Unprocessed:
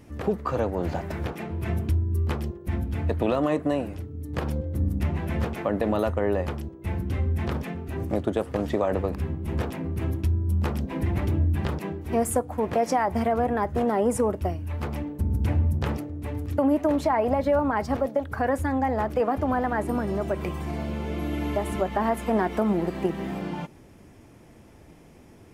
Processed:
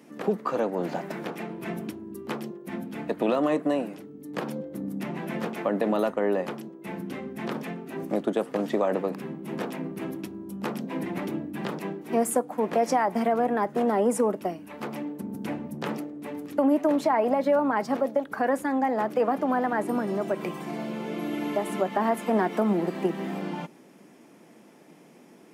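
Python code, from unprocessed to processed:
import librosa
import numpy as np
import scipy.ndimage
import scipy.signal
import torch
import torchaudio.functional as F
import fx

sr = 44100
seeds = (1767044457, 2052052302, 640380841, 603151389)

y = scipy.signal.sosfilt(scipy.signal.butter(6, 170.0, 'highpass', fs=sr, output='sos'), x)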